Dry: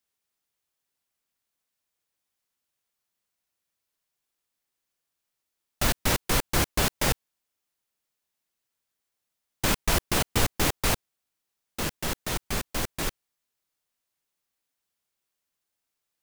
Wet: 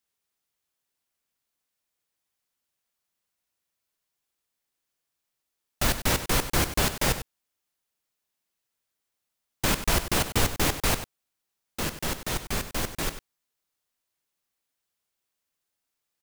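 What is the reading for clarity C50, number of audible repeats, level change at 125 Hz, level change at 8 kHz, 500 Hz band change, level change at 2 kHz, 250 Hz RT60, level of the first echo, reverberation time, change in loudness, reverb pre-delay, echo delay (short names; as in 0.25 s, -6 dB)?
none, 1, +0.5 dB, +0.5 dB, +0.5 dB, +0.5 dB, none, -12.0 dB, none, +0.5 dB, none, 96 ms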